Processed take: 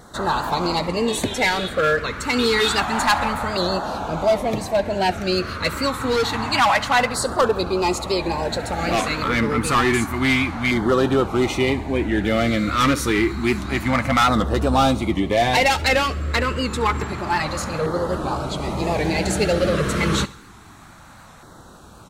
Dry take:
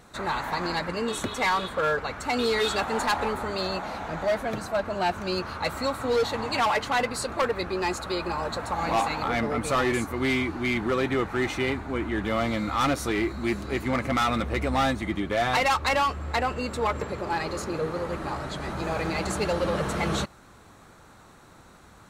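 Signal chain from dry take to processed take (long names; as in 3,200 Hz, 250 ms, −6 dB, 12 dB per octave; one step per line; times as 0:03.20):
on a send: repeating echo 68 ms, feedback 49%, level −19.5 dB
on the sum: auto-filter notch saw down 0.28 Hz 340–2,600 Hz
wow of a warped record 78 rpm, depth 100 cents
level +8 dB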